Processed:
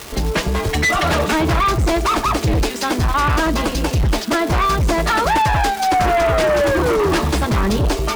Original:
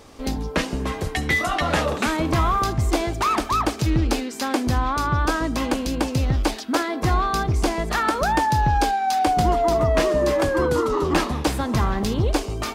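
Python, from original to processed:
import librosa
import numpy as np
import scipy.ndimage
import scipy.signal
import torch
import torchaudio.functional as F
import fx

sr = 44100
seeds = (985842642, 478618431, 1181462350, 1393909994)

p1 = scipy.ndimage.median_filter(x, 3, mode='constant')
p2 = fx.stretch_vocoder(p1, sr, factor=0.64)
p3 = fx.dmg_crackle(p2, sr, seeds[0], per_s=490.0, level_db=-29.0)
p4 = fx.notch_comb(p3, sr, f0_hz=260.0)
p5 = fx.fold_sine(p4, sr, drive_db=14, ceiling_db=-8.0)
p6 = p4 + F.gain(torch.from_numpy(p5), -12.0).numpy()
y = F.gain(torch.from_numpy(p6), 1.5).numpy()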